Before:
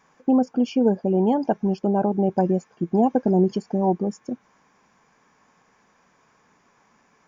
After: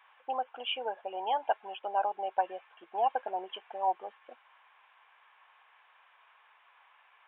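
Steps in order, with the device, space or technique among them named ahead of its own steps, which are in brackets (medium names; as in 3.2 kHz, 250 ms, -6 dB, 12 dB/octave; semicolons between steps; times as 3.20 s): musical greeting card (resampled via 8 kHz; high-pass 760 Hz 24 dB/octave; peaking EQ 2.9 kHz +8 dB 0.43 oct)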